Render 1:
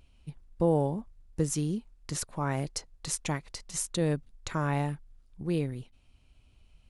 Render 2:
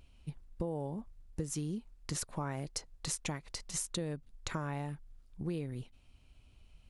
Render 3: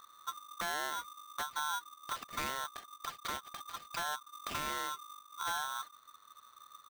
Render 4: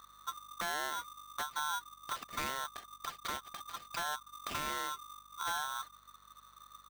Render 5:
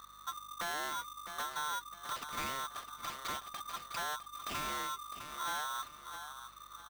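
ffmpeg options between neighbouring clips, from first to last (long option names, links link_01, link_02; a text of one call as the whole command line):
ffmpeg -i in.wav -af "acompressor=threshold=-33dB:ratio=12" out.wav
ffmpeg -i in.wav -af "aresample=8000,aeval=exprs='0.0299*(abs(mod(val(0)/0.0299+3,4)-2)-1)':channel_layout=same,aresample=44100,aeval=exprs='val(0)*sgn(sin(2*PI*1200*n/s))':channel_layout=same,volume=1dB" out.wav
ffmpeg -i in.wav -af "aeval=exprs='val(0)+0.000251*(sin(2*PI*50*n/s)+sin(2*PI*2*50*n/s)/2+sin(2*PI*3*50*n/s)/3+sin(2*PI*4*50*n/s)/4+sin(2*PI*5*50*n/s)/5)':channel_layout=same" out.wav
ffmpeg -i in.wav -af "aecho=1:1:657|1314|1971:0.211|0.0634|0.019,asoftclip=type=tanh:threshold=-37.5dB,volume=3.5dB" out.wav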